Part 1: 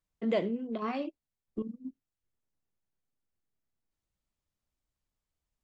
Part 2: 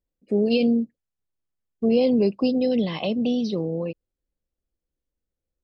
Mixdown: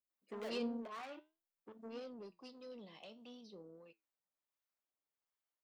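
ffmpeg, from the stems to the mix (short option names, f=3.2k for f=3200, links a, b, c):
-filter_complex "[0:a]highshelf=f=2.9k:g=-8,asplit=2[a][b];[b]highpass=f=720:p=1,volume=27dB,asoftclip=type=tanh:threshold=-17dB[c];[a][c]amix=inputs=2:normalize=0,lowpass=f=1.2k:p=1,volume=-6dB,adelay=100,volume=-13.5dB[d];[1:a]highshelf=f=4k:g=-8,asoftclip=type=tanh:threshold=-16.5dB,volume=-8.5dB,afade=t=out:st=1.49:d=0.6:silence=0.334965[e];[d][e]amix=inputs=2:normalize=0,aemphasis=mode=production:type=riaa,acrossover=split=880[f][g];[f]aeval=exprs='val(0)*(1-0.5/2+0.5/2*cos(2*PI*1.4*n/s))':c=same[h];[g]aeval=exprs='val(0)*(1-0.5/2-0.5/2*cos(2*PI*1.4*n/s))':c=same[i];[h][i]amix=inputs=2:normalize=0,flanger=delay=8.2:depth=7:regen=75:speed=0.52:shape=triangular"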